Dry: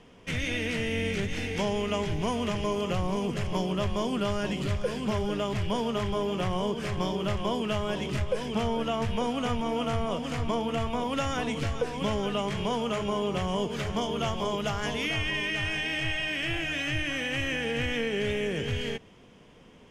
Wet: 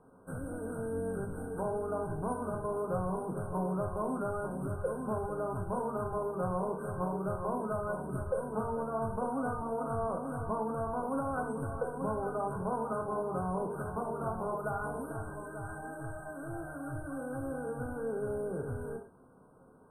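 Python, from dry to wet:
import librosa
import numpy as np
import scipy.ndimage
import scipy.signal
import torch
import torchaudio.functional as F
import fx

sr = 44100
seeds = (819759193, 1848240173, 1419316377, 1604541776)

y = fx.brickwall_bandstop(x, sr, low_hz=1600.0, high_hz=8100.0)
y = fx.low_shelf(y, sr, hz=190.0, db=-8.5)
y = fx.rev_gated(y, sr, seeds[0], gate_ms=160, shape='falling', drr_db=1.5)
y = F.gain(torch.from_numpy(y), -4.5).numpy()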